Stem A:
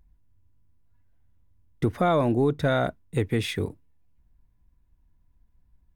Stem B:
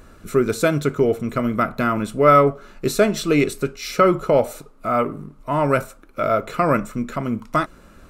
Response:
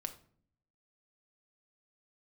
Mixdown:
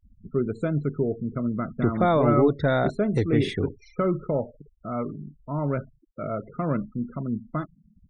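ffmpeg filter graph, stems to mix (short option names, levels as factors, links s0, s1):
-filter_complex "[0:a]volume=1.06,asplit=2[s0][s1];[s1]volume=0.126[s2];[1:a]equalizer=f=150:t=o:w=2.8:g=12.5,volume=0.168,asplit=2[s3][s4];[s4]volume=0.126[s5];[2:a]atrim=start_sample=2205[s6];[s2][s5]amix=inputs=2:normalize=0[s7];[s7][s6]afir=irnorm=-1:irlink=0[s8];[s0][s3][s8]amix=inputs=3:normalize=0,afftfilt=real='re*gte(hypot(re,im),0.0141)':imag='im*gte(hypot(re,im),0.0141)':win_size=1024:overlap=0.75,highshelf=f=4600:g=-9,bandreject=f=2500:w=11"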